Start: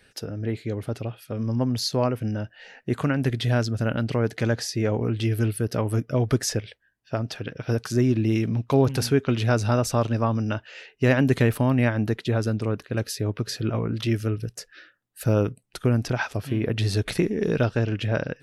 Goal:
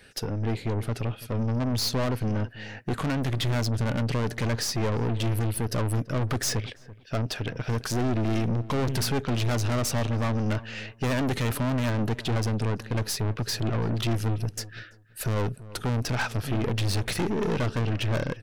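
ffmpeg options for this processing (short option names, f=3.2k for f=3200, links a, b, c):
-filter_complex "[0:a]acontrast=53,aeval=exprs='(tanh(15.8*val(0)+0.45)-tanh(0.45))/15.8':c=same,asplit=2[a][b];[b]adelay=334,lowpass=f=1.1k:p=1,volume=-16.5dB,asplit=2[c][d];[d]adelay=334,lowpass=f=1.1k:p=1,volume=0.2[e];[a][c][e]amix=inputs=3:normalize=0"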